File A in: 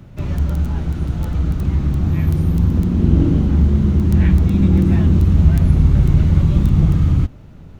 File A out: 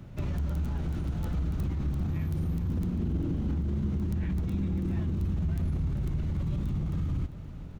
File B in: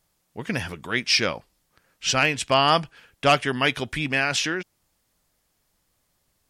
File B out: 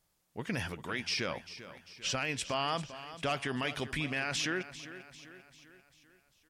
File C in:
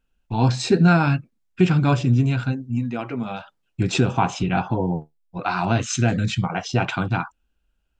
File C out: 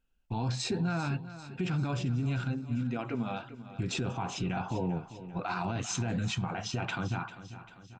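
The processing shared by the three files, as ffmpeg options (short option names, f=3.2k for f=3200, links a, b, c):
-af "acompressor=threshold=-22dB:ratio=1.5,alimiter=limit=-18.5dB:level=0:latency=1:release=27,aecho=1:1:395|790|1185|1580|1975:0.2|0.102|0.0519|0.0265|0.0135,volume=-5.5dB"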